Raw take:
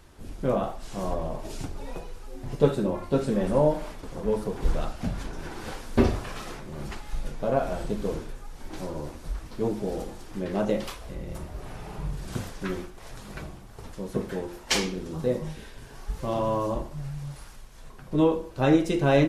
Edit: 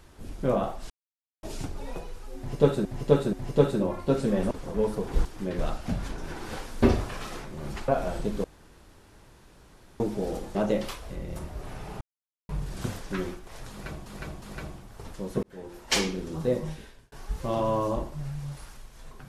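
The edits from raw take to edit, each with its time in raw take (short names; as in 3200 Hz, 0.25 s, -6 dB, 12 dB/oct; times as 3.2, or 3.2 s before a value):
0.9–1.43 mute
2.37–2.85 loop, 3 plays
3.55–4 cut
7.03–7.53 cut
8.09–9.65 room tone
10.2–10.54 move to 4.74
12 insert silence 0.48 s
13.21–13.57 loop, 3 plays
14.22–14.74 fade in
15.49–15.91 fade out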